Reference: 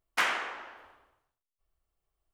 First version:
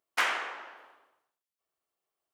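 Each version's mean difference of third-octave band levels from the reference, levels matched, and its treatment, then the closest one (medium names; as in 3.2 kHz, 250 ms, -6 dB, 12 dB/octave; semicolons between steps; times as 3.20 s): 1.5 dB: high-pass 300 Hz 12 dB/octave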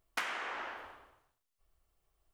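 7.5 dB: compression 8:1, threshold -40 dBFS, peak gain reduction 17.5 dB; trim +5.5 dB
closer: first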